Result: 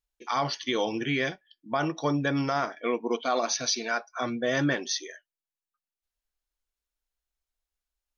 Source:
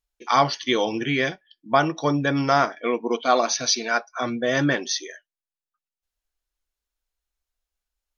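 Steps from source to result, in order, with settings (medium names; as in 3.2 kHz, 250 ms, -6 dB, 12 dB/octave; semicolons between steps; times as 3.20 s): peak limiter -12 dBFS, peak gain reduction 8 dB; trim -4 dB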